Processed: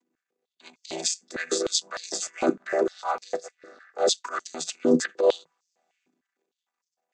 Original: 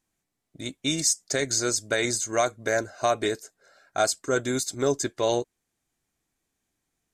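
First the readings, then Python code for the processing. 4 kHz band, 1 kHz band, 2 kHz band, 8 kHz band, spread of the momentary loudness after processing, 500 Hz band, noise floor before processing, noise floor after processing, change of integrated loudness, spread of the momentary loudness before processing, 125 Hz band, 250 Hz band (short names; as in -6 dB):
-0.5 dB, -2.5 dB, -4.5 dB, -4.0 dB, 12 LU, +0.5 dB, -81 dBFS, under -85 dBFS, -1.0 dB, 7 LU, -10.0 dB, +1.5 dB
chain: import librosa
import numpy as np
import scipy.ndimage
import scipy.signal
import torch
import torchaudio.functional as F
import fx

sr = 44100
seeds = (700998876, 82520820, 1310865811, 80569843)

y = fx.chord_vocoder(x, sr, chord='minor triad', root=52)
y = fx.transient(y, sr, attack_db=-9, sustain_db=11)
y = fx.filter_held_highpass(y, sr, hz=6.6, low_hz=290.0, high_hz=5400.0)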